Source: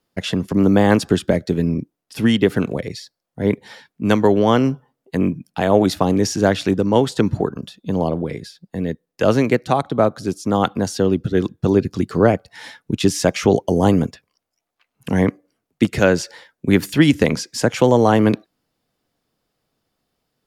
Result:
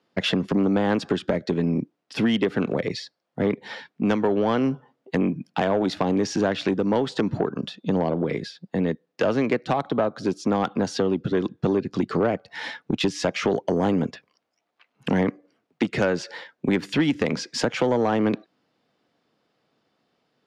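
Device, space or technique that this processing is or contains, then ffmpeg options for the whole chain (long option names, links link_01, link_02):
AM radio: -af "highpass=170,lowpass=4100,acompressor=threshold=-23dB:ratio=4,asoftclip=type=tanh:threshold=-17.5dB,volume=5dB"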